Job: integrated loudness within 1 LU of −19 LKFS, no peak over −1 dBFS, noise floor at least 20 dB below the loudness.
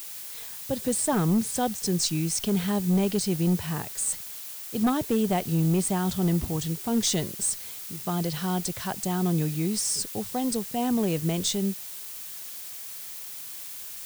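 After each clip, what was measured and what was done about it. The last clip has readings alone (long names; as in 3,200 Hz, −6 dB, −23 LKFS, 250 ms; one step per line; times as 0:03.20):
share of clipped samples 0.7%; peaks flattened at −18.0 dBFS; background noise floor −39 dBFS; target noise floor −48 dBFS; integrated loudness −27.5 LKFS; sample peak −18.0 dBFS; target loudness −19.0 LKFS
→ clipped peaks rebuilt −18 dBFS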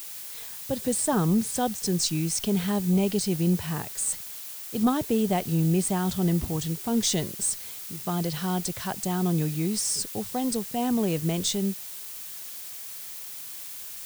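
share of clipped samples 0.0%; background noise floor −39 dBFS; target noise floor −47 dBFS
→ broadband denoise 8 dB, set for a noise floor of −39 dBFS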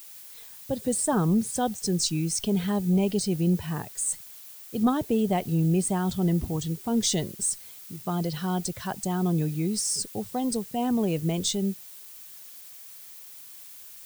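background noise floor −46 dBFS; target noise floor −47 dBFS
→ broadband denoise 6 dB, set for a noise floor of −46 dBFS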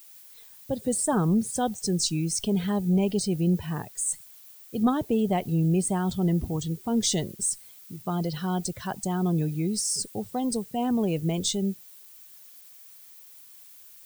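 background noise floor −50 dBFS; integrated loudness −27.0 LKFS; sample peak −12.5 dBFS; target loudness −19.0 LKFS
→ level +8 dB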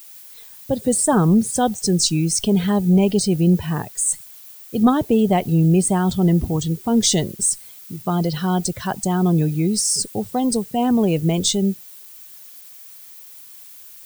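integrated loudness −19.0 LKFS; sample peak −4.5 dBFS; background noise floor −42 dBFS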